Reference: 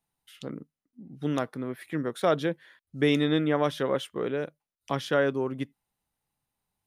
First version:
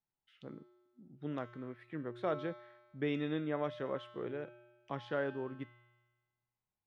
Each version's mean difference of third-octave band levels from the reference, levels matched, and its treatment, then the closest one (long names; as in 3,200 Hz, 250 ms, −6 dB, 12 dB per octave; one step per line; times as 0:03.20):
4.0 dB: low-pass filter 2,700 Hz 12 dB per octave
tuned comb filter 120 Hz, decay 1.3 s, harmonics odd, mix 80%
level +2 dB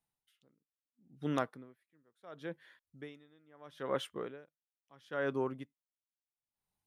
8.5 dB: dynamic equaliser 1,200 Hz, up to +5 dB, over −38 dBFS, Q 0.77
tremolo with a sine in dB 0.74 Hz, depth 36 dB
level −6 dB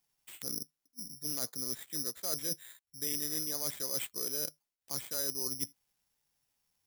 13.5 dB: reversed playback
downward compressor 6 to 1, threshold −37 dBFS, peak gain reduction 17.5 dB
reversed playback
bad sample-rate conversion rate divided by 8×, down none, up zero stuff
level −5.5 dB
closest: first